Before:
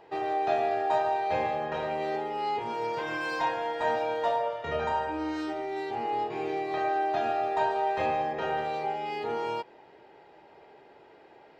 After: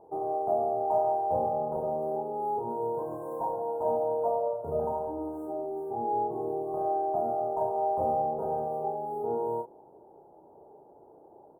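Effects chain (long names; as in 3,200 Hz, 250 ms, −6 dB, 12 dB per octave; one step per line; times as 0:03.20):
running median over 5 samples
inverse Chebyshev band-stop filter 2,000–4,800 Hz, stop band 60 dB
double-tracking delay 34 ms −6 dB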